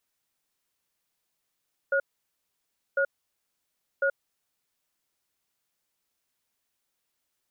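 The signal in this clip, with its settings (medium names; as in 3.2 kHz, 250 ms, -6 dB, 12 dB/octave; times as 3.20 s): cadence 552 Hz, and 1.44 kHz, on 0.08 s, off 0.97 s, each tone -24 dBFS 2.83 s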